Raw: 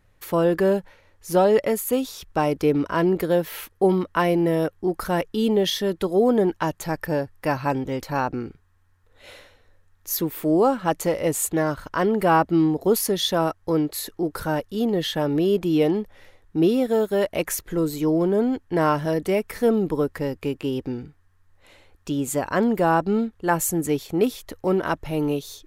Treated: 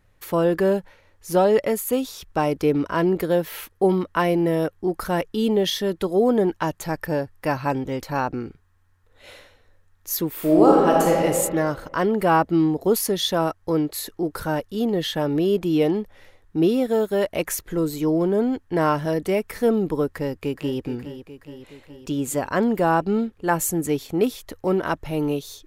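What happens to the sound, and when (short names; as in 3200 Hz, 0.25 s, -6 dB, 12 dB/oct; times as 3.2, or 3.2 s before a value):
10.33–11.25 reverb throw, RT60 1.6 s, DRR -2.5 dB
20.12–20.86 echo throw 0.42 s, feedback 65%, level -11.5 dB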